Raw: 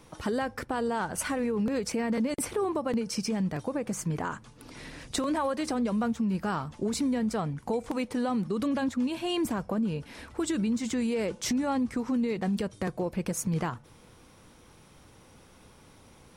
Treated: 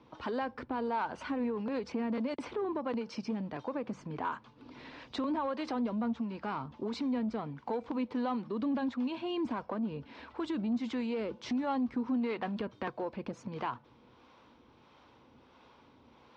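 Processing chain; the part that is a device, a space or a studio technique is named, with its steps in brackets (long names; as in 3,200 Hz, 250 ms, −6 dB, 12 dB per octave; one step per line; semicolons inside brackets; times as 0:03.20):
0:12.21–0:12.90: dynamic equaliser 1,400 Hz, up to +7 dB, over −48 dBFS, Q 0.76
guitar amplifier with harmonic tremolo (two-band tremolo in antiphase 1.5 Hz, depth 50%, crossover 420 Hz; soft clipping −24 dBFS, distortion −20 dB; loudspeaker in its box 82–4,200 Hz, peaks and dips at 99 Hz −8 dB, 170 Hz −10 dB, 250 Hz +4 dB, 970 Hz +6 dB, 1,900 Hz −3 dB)
level −2 dB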